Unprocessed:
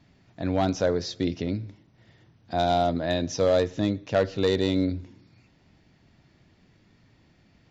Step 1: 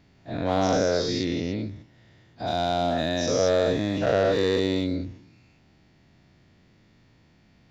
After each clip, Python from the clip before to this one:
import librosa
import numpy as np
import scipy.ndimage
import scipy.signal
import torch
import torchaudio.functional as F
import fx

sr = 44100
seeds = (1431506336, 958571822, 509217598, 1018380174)

y = fx.spec_dilate(x, sr, span_ms=240)
y = F.gain(torch.from_numpy(y), -4.5).numpy()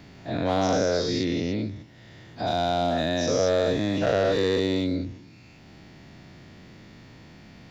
y = fx.band_squash(x, sr, depth_pct=40)